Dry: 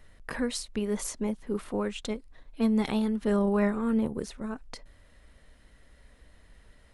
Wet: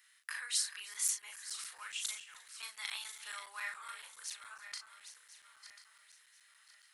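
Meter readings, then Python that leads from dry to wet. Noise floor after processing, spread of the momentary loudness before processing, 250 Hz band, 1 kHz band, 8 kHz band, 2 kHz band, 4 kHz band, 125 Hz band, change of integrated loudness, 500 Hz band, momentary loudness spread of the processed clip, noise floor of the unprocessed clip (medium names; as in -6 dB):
-67 dBFS, 13 LU, under -40 dB, -12.0 dB, +4.5 dB, -1.5 dB, +1.5 dB, under -40 dB, -9.5 dB, -38.0 dB, 21 LU, -59 dBFS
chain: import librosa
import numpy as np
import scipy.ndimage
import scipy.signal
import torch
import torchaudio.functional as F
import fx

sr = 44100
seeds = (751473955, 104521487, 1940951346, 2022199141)

p1 = fx.reverse_delay_fb(x, sr, ms=520, feedback_pct=58, wet_db=-10.5)
p2 = scipy.signal.sosfilt(scipy.signal.butter(4, 1400.0, 'highpass', fs=sr, output='sos'), p1)
p3 = fx.high_shelf(p2, sr, hz=4700.0, db=9.0)
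p4 = fx.doubler(p3, sr, ms=38.0, db=-4.5)
p5 = p4 + fx.echo_single(p4, sr, ms=313, db=-21.0, dry=0)
p6 = fx.buffer_crackle(p5, sr, first_s=0.94, period_s=0.14, block=256, kind='zero')
y = p6 * librosa.db_to_amplitude(-4.0)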